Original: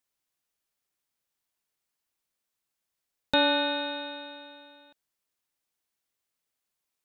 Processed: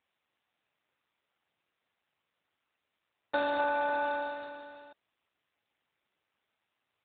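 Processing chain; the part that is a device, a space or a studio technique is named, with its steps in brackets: 3.59–4.74 dynamic EQ 920 Hz, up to +6 dB, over -45 dBFS, Q 0.95; voicemail (BPF 400–2600 Hz; compressor 8:1, threshold -33 dBFS, peak gain reduction 11.5 dB; gain +8 dB; AMR-NB 7.4 kbps 8000 Hz)

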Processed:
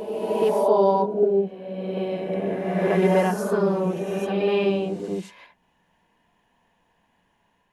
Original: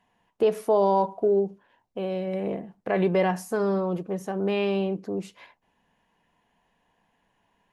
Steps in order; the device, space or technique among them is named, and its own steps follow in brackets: reverse reverb (reverse; reverb RT60 2.1 s, pre-delay 31 ms, DRR -0.5 dB; reverse)

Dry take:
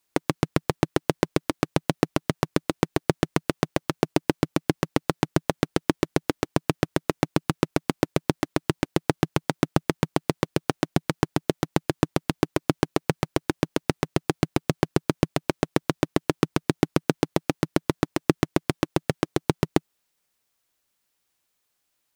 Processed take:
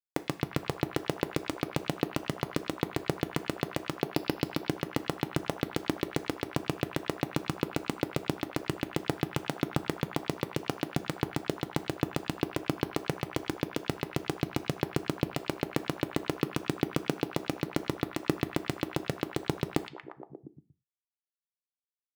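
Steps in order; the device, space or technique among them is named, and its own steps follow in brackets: 4.06–4.61 resonant high shelf 6700 Hz -10 dB, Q 3; early 8-bit sampler (sample-rate reducer 16000 Hz, jitter 0%; bit-crush 8-bit); delay with a stepping band-pass 0.117 s, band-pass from 3200 Hz, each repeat -0.7 oct, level -2 dB; non-linear reverb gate 0.13 s falling, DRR 11 dB; gain -8 dB

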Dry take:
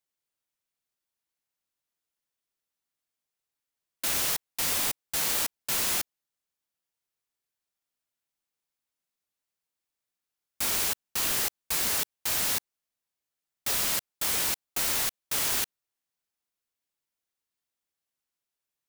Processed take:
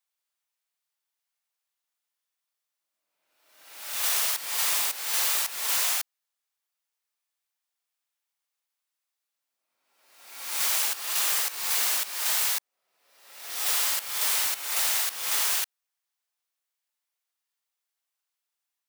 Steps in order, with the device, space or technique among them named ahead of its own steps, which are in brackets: ghost voice (reverse; reverb RT60 1.2 s, pre-delay 35 ms, DRR 0 dB; reverse; HPF 730 Hz 12 dB/oct)

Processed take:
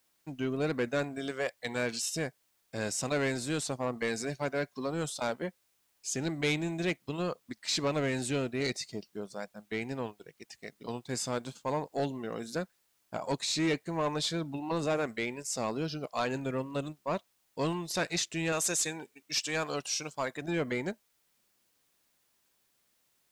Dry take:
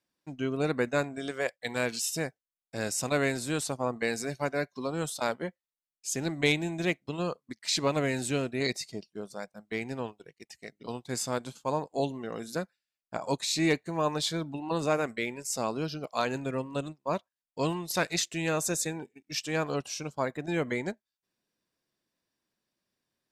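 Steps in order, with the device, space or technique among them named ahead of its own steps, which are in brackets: 18.52–20.42 tilt +2.5 dB/oct; compact cassette (soft clip -23 dBFS, distortion -14 dB; LPF 9200 Hz 12 dB/oct; wow and flutter 22 cents; white noise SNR 39 dB)

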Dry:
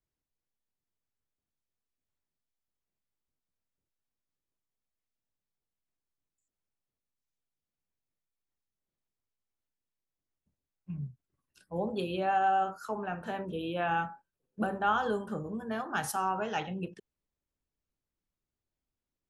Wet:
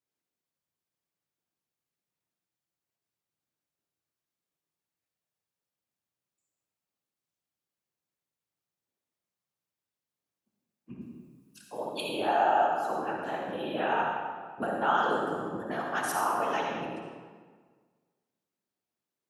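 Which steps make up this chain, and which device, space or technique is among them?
11.01–12.09 tilt +3.5 dB/oct; whispering ghost (whisperiser; HPF 250 Hz 12 dB/oct; reverb RT60 1.6 s, pre-delay 50 ms, DRR 0 dB)

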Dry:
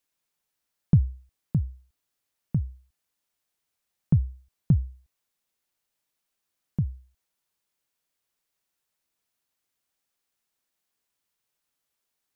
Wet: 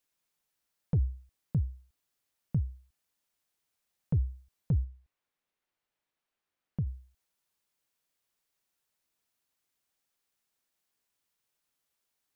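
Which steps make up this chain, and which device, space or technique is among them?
soft clipper into limiter (soft clip -13.5 dBFS, distortion -16 dB; limiter -20.5 dBFS, peak gain reduction 6.5 dB); 4.84–6.87 tone controls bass -3 dB, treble -12 dB; gain -1 dB

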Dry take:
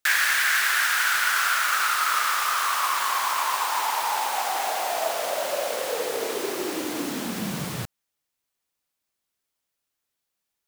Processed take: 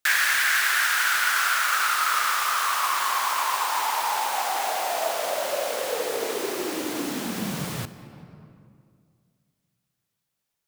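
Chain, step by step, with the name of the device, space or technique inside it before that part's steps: compressed reverb return (on a send at -6 dB: reverb RT60 2.1 s, pre-delay 41 ms + compressor 5:1, threshold -34 dBFS, peak gain reduction 13.5 dB)

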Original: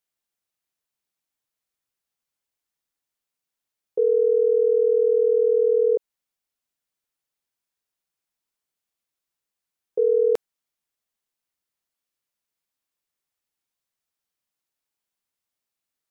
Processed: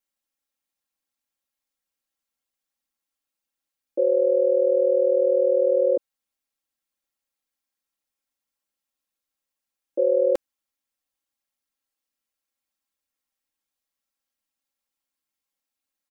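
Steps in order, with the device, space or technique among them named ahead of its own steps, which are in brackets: ring-modulated robot voice (ring modulator 71 Hz; comb 3.7 ms, depth 83%)

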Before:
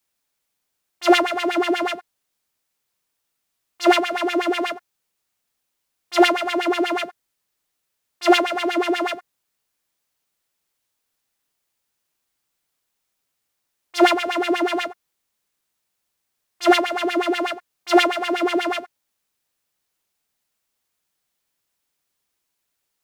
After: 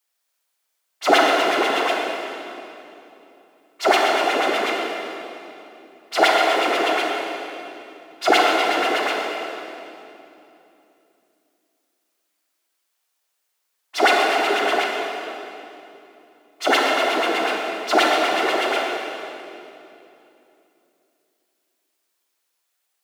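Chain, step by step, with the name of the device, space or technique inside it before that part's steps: whispering ghost (whisperiser; HPF 510 Hz 12 dB/oct; reverb RT60 2.9 s, pre-delay 31 ms, DRR -0.5 dB)

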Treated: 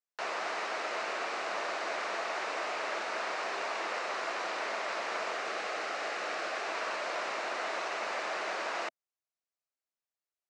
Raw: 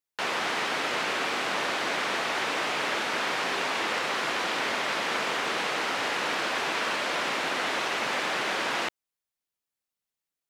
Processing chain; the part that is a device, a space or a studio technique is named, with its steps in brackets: television speaker (speaker cabinet 230–7800 Hz, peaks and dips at 260 Hz -9 dB, 650 Hz +7 dB, 1200 Hz +3 dB, 3300 Hz -7 dB); 5.32–6.68 notch 960 Hz, Q 7; gain -7.5 dB

